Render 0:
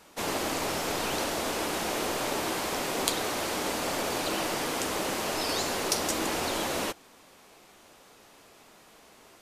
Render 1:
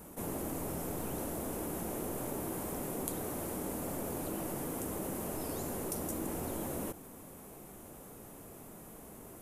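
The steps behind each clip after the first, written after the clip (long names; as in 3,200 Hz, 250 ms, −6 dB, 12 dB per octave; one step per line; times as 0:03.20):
drawn EQ curve 160 Hz 0 dB, 4,600 Hz −25 dB, 11,000 Hz −2 dB
envelope flattener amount 50%
level −2 dB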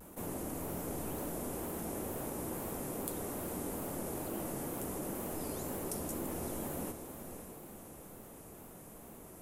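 feedback delay with all-pass diffusion 522 ms, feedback 45%, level −8.5 dB
tape wow and flutter 79 cents
level −2 dB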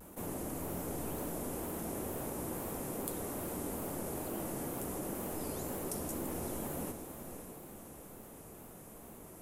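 floating-point word with a short mantissa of 6 bits
convolution reverb RT60 1.6 s, pre-delay 42 ms, DRR 14 dB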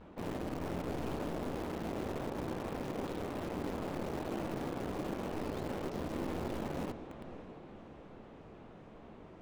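low-pass filter 3,900 Hz 24 dB per octave
in parallel at −10 dB: bit-depth reduction 6 bits, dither none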